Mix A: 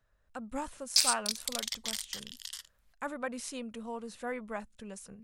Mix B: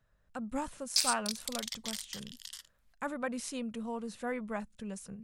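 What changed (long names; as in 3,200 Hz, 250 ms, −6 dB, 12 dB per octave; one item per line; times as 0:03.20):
speech: add parametric band 160 Hz +7.5 dB 1.1 octaves
background −3.5 dB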